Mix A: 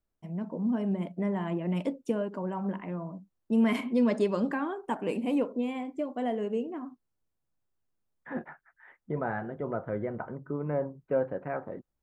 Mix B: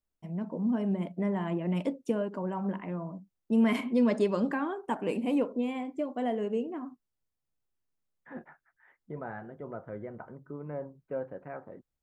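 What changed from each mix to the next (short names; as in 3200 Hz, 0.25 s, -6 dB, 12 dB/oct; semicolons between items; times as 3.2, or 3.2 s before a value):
second voice -7.5 dB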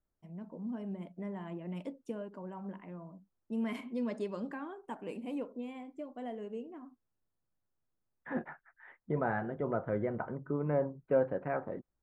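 first voice -10.5 dB; second voice +7.0 dB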